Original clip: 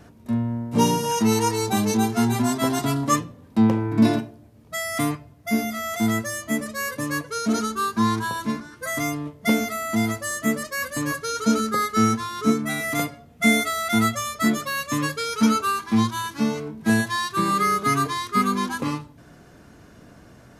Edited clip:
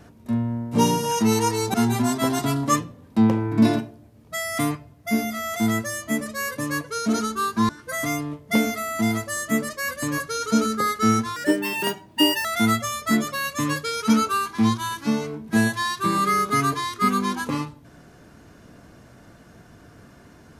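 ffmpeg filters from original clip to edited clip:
ffmpeg -i in.wav -filter_complex "[0:a]asplit=5[link_01][link_02][link_03][link_04][link_05];[link_01]atrim=end=1.742[link_06];[link_02]atrim=start=2.138:end=8.092[link_07];[link_03]atrim=start=8.628:end=12.304[link_08];[link_04]atrim=start=12.3:end=13.78,asetpts=PTS-STARTPTS,asetrate=59976,aresample=44100,atrim=end_sample=47991,asetpts=PTS-STARTPTS[link_09];[link_05]atrim=start=13.776[link_10];[link_06][link_07]acrossfade=duration=0.004:curve1=hsin:curve2=hsin[link_11];[link_11][link_08]acrossfade=duration=0.004:curve1=hsin:curve2=hsin[link_12];[link_12][link_09]acrossfade=duration=0.004:curve1=hsin:curve2=hsin[link_13];[link_13][link_10]acrossfade=duration=0.004:curve1=hsin:curve2=hsin" out.wav

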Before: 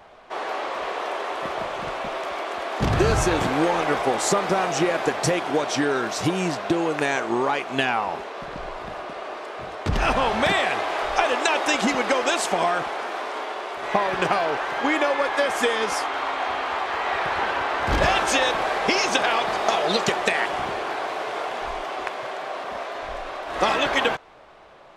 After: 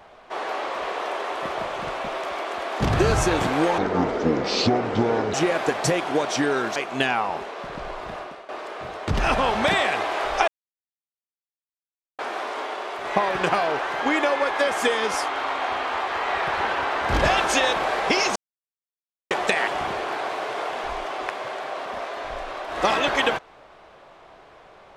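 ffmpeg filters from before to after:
ffmpeg -i in.wav -filter_complex "[0:a]asplit=9[link_01][link_02][link_03][link_04][link_05][link_06][link_07][link_08][link_09];[link_01]atrim=end=3.784[link_10];[link_02]atrim=start=3.78:end=4.73,asetpts=PTS-STARTPTS,asetrate=26901,aresample=44100,atrim=end_sample=68680,asetpts=PTS-STARTPTS[link_11];[link_03]atrim=start=4.726:end=6.152[link_12];[link_04]atrim=start=7.538:end=9.27,asetpts=PTS-STARTPTS,afade=type=out:start_time=1.412:duration=0.32:silence=0.188365[link_13];[link_05]atrim=start=9.27:end=11.26,asetpts=PTS-STARTPTS,afade=type=in:duration=0.004:curve=hsin:silence=0.188365,afade=type=out:start_time=1.986:duration=0.004:curve=hsin[link_14];[link_06]atrim=start=11.26:end=12.97,asetpts=PTS-STARTPTS,volume=0[link_15];[link_07]atrim=start=12.97:end=19.14,asetpts=PTS-STARTPTS,afade=type=in:duration=0.004:curve=hsin,afade=type=out:start_time=6.166:duration=0.004:curve=hsin[link_16];[link_08]atrim=start=19.14:end=20.09,asetpts=PTS-STARTPTS,volume=0[link_17];[link_09]atrim=start=20.09,asetpts=PTS-STARTPTS,afade=type=in:duration=0.004:curve=hsin[link_18];[link_10][link_11]acrossfade=duration=0.004:curve1=hsin:curve2=hsin[link_19];[link_19][link_12]acrossfade=duration=0.004:curve1=hsin:curve2=hsin[link_20];[link_13][link_14][link_15][link_16][link_17][link_18]concat=n=6:v=0:a=1[link_21];[link_20][link_21]acrossfade=duration=0.004:curve1=hsin:curve2=hsin" out.wav

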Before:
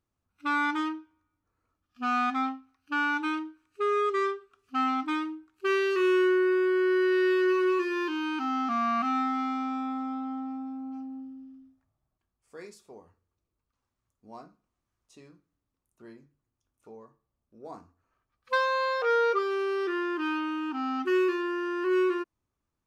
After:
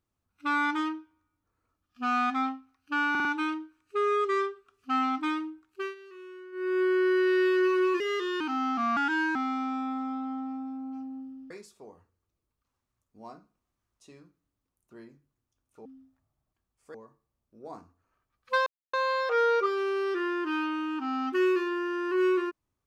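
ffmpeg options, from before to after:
ffmpeg -i in.wav -filter_complex "[0:a]asplit=14[link_01][link_02][link_03][link_04][link_05][link_06][link_07][link_08][link_09][link_10][link_11][link_12][link_13][link_14];[link_01]atrim=end=3.152[link_15];[link_02]atrim=start=3.098:end=3.152[link_16];[link_03]atrim=start=3.098:end=3.152[link_17];[link_04]atrim=start=3.098:end=5.8,asetpts=PTS-STARTPTS,afade=type=out:start_time=2.402:duration=0.3:silence=0.0749894[link_18];[link_05]atrim=start=5.8:end=6.37,asetpts=PTS-STARTPTS,volume=-22.5dB[link_19];[link_06]atrim=start=6.37:end=7.854,asetpts=PTS-STARTPTS,afade=type=in:duration=0.3:silence=0.0749894[link_20];[link_07]atrim=start=7.85:end=8.32,asetpts=PTS-STARTPTS,asetrate=51156,aresample=44100,atrim=end_sample=17868,asetpts=PTS-STARTPTS[link_21];[link_08]atrim=start=8.316:end=8.884[link_22];[link_09]atrim=start=8.88:end=9.35,asetpts=PTS-STARTPTS,asetrate=53361,aresample=44100[link_23];[link_10]atrim=start=9.346:end=11.502[link_24];[link_11]atrim=start=12.588:end=16.942[link_25];[link_12]atrim=start=11.498:end=12.592[link_26];[link_13]atrim=start=16.938:end=18.66,asetpts=PTS-STARTPTS,afade=type=out:start_time=1.718:duration=0.004:curve=hsin,apad=pad_dur=0.27[link_27];[link_14]atrim=start=18.66,asetpts=PTS-STARTPTS,afade=type=in:duration=0.004:curve=hsin[link_28];[link_15][link_16]acrossfade=duration=0.004:curve1=hsin:curve2=hsin[link_29];[link_29][link_17]acrossfade=duration=0.004:curve1=hsin:curve2=hsin[link_30];[link_18][link_19][link_20]concat=n=3:v=0:a=1[link_31];[link_30][link_31]acrossfade=duration=0.004:curve1=hsin:curve2=hsin[link_32];[link_32][link_21]acrossfade=duration=0.004:curve1=hsin:curve2=hsin[link_33];[link_33][link_22]acrossfade=duration=0.004:curve1=hsin:curve2=hsin[link_34];[link_34][link_23]acrossfade=duration=0.004:curve1=hsin:curve2=hsin[link_35];[link_35][link_24]acrossfade=duration=0.004:curve1=hsin:curve2=hsin[link_36];[link_36][link_25]acrossfade=duration=0.004:curve1=hsin:curve2=hsin[link_37];[link_37][link_26]acrossfade=duration=0.004:curve1=hsin:curve2=hsin[link_38];[link_27][link_28]concat=n=2:v=0:a=1[link_39];[link_38][link_39]acrossfade=duration=0.004:curve1=hsin:curve2=hsin" out.wav

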